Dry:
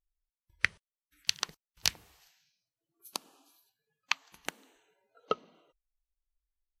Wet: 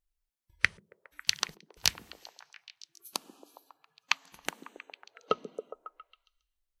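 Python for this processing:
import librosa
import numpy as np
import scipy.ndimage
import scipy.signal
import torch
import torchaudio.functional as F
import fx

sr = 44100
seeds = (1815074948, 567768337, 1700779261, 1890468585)

y = fx.echo_stepped(x, sr, ms=137, hz=260.0, octaves=0.7, feedback_pct=70, wet_db=-5)
y = y * 10.0 ** (2.5 / 20.0)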